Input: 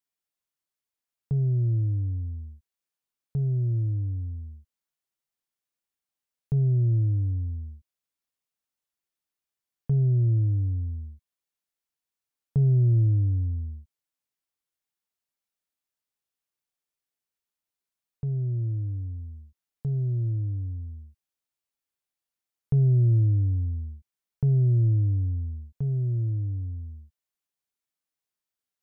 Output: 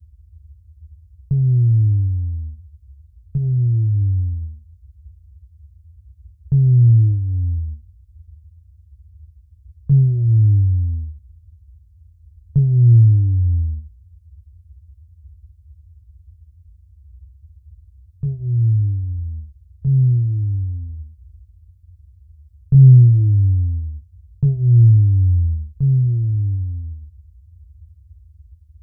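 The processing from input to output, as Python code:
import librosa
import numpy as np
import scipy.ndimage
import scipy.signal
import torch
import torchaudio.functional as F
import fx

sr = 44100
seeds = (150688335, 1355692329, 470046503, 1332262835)

y = fx.chorus_voices(x, sr, voices=4, hz=0.17, base_ms=23, depth_ms=3.8, mix_pct=30)
y = fx.bass_treble(y, sr, bass_db=13, treble_db=6)
y = fx.dmg_noise_band(y, sr, seeds[0], low_hz=52.0, high_hz=90.0, level_db=-44.0)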